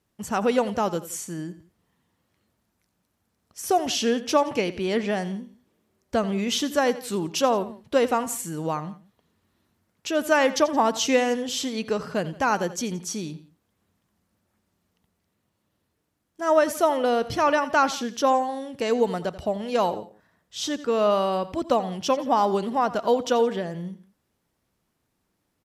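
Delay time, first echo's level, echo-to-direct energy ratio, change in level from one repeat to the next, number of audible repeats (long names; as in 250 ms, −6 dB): 86 ms, −16.0 dB, −15.5 dB, −7.0 dB, 2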